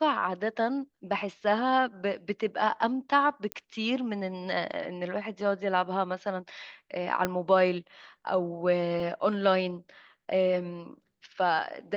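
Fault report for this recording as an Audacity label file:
3.520000	3.520000	pop -16 dBFS
7.250000	7.250000	pop -12 dBFS
9.000000	9.000000	gap 2.3 ms

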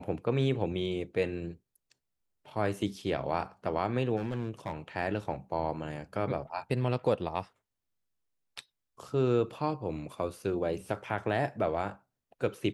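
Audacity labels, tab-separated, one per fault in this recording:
4.160000	4.730000	clipped -29 dBFS

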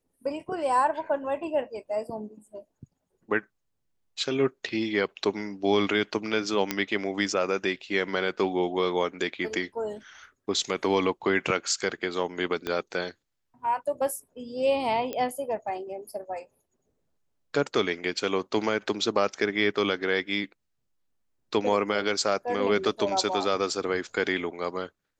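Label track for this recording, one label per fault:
6.710000	6.710000	pop -9 dBFS
12.670000	12.670000	pop -16 dBFS
15.130000	15.130000	pop -17 dBFS

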